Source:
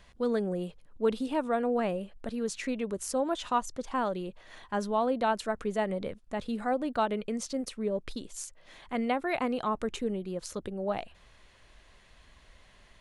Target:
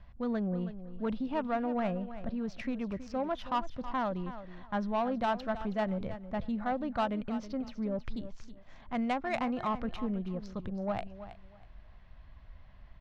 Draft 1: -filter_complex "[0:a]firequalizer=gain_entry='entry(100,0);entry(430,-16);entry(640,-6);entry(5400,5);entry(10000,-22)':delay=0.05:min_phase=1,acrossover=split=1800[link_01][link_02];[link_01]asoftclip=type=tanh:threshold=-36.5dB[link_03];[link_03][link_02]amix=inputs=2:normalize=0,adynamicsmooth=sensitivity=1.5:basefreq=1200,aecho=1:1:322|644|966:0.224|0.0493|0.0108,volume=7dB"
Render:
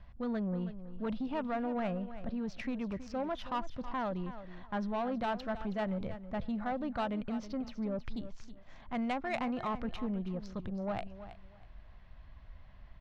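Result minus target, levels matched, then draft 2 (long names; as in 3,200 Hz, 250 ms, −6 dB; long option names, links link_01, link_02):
soft clipping: distortion +6 dB
-filter_complex "[0:a]firequalizer=gain_entry='entry(100,0);entry(430,-16);entry(640,-6);entry(5400,5);entry(10000,-22)':delay=0.05:min_phase=1,acrossover=split=1800[link_01][link_02];[link_01]asoftclip=type=tanh:threshold=-30dB[link_03];[link_03][link_02]amix=inputs=2:normalize=0,adynamicsmooth=sensitivity=1.5:basefreq=1200,aecho=1:1:322|644|966:0.224|0.0493|0.0108,volume=7dB"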